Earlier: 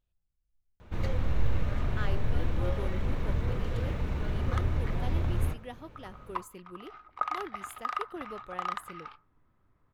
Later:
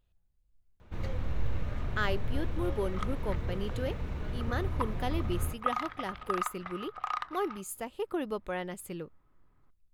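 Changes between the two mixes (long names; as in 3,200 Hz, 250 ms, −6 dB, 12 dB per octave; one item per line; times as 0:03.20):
speech +8.0 dB
first sound −4.5 dB
second sound: entry −1.55 s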